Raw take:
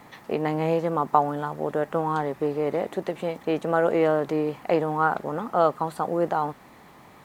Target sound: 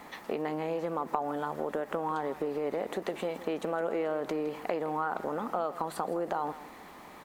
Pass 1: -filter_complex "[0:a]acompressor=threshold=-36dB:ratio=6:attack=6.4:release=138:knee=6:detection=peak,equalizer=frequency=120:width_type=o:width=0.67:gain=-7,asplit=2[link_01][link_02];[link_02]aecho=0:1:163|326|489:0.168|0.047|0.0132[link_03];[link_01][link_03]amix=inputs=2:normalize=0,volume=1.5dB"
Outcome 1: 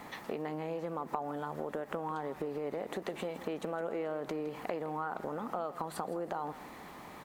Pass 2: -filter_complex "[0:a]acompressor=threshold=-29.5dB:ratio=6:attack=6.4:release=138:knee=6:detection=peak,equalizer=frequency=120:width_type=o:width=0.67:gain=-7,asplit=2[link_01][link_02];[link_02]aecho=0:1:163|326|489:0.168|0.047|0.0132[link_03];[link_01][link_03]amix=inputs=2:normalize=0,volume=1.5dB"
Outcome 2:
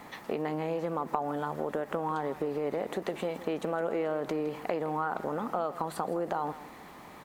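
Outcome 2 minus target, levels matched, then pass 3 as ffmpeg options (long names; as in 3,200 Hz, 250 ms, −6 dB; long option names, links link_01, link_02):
125 Hz band +4.0 dB
-filter_complex "[0:a]acompressor=threshold=-29.5dB:ratio=6:attack=6.4:release=138:knee=6:detection=peak,equalizer=frequency=120:width_type=o:width=0.67:gain=-16.5,asplit=2[link_01][link_02];[link_02]aecho=0:1:163|326|489:0.168|0.047|0.0132[link_03];[link_01][link_03]amix=inputs=2:normalize=0,volume=1.5dB"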